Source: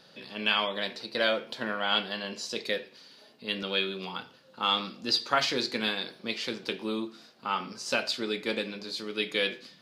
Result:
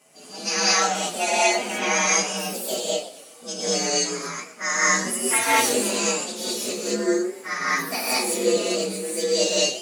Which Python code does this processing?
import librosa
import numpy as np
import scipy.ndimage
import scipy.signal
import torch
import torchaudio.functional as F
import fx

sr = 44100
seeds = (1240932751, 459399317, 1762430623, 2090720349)

y = fx.partial_stretch(x, sr, pct=126)
y = scipy.signal.sosfilt(scipy.signal.butter(2, 250.0, 'highpass', fs=sr, output='sos'), y)
y = fx.rev_gated(y, sr, seeds[0], gate_ms=250, shape='rising', drr_db=-8.0)
y = fx.echo_warbled(y, sr, ms=123, feedback_pct=46, rate_hz=2.8, cents=205, wet_db=-15.5)
y = y * librosa.db_to_amplitude(3.5)